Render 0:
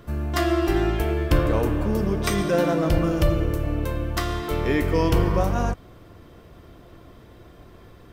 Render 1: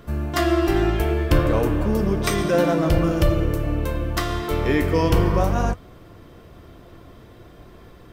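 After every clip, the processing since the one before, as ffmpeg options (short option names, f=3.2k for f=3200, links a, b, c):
-af "flanger=delay=4.2:depth=7.9:regen=-79:speed=0.51:shape=triangular,volume=6.5dB"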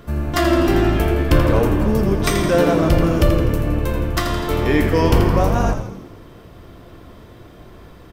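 -filter_complex "[0:a]asplit=8[a][b][c][d][e][f][g][h];[b]adelay=83,afreqshift=-80,volume=-8.5dB[i];[c]adelay=166,afreqshift=-160,volume=-13.5dB[j];[d]adelay=249,afreqshift=-240,volume=-18.6dB[k];[e]adelay=332,afreqshift=-320,volume=-23.6dB[l];[f]adelay=415,afreqshift=-400,volume=-28.6dB[m];[g]adelay=498,afreqshift=-480,volume=-33.7dB[n];[h]adelay=581,afreqshift=-560,volume=-38.7dB[o];[a][i][j][k][l][m][n][o]amix=inputs=8:normalize=0,volume=3dB"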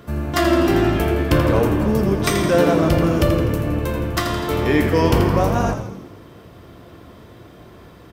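-af "highpass=71"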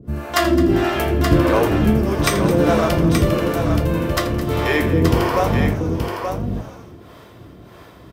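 -filter_complex "[0:a]acrossover=split=420[a][b];[a]aeval=exprs='val(0)*(1-1/2+1/2*cos(2*PI*1.6*n/s))':c=same[c];[b]aeval=exprs='val(0)*(1-1/2-1/2*cos(2*PI*1.6*n/s))':c=same[d];[c][d]amix=inputs=2:normalize=0,asplit=2[e][f];[f]aecho=0:1:214|876:0.188|0.501[g];[e][g]amix=inputs=2:normalize=0,volume=4.5dB"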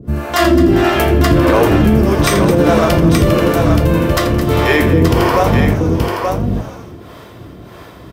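-af "alimiter=level_in=8dB:limit=-1dB:release=50:level=0:latency=1,volume=-1dB"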